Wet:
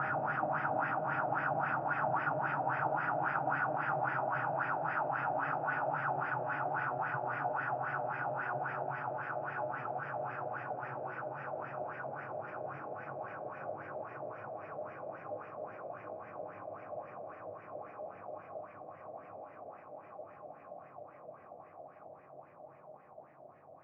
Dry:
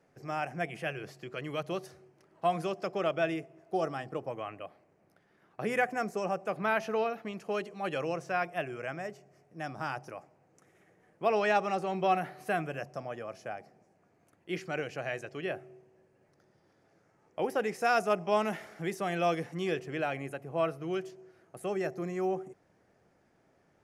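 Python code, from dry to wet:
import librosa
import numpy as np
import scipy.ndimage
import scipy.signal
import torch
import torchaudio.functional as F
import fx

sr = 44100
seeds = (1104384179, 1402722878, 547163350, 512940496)

y = fx.spec_blur(x, sr, span_ms=160.0)
y = fx.paulstretch(y, sr, seeds[0], factor=41.0, window_s=0.5, from_s=9.81)
y = fx.filter_lfo_lowpass(y, sr, shape='sine', hz=3.7, low_hz=620.0, high_hz=2000.0, q=4.2)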